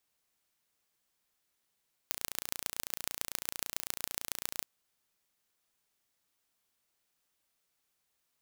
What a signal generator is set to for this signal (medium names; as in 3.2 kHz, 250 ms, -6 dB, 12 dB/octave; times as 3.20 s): pulse train 29 per s, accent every 4, -4.5 dBFS 2.55 s